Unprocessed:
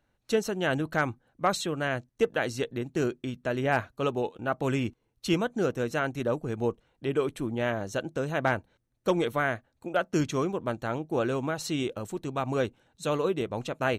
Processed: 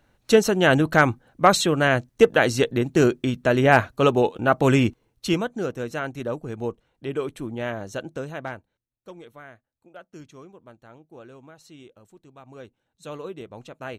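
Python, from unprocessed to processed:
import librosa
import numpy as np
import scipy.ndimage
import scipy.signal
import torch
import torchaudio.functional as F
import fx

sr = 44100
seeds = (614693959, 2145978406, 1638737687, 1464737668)

y = fx.gain(x, sr, db=fx.line((4.83, 10.0), (5.61, -0.5), (8.16, -0.5), (8.46, -7.0), (9.09, -17.0), (12.43, -17.0), (13.1, -8.0)))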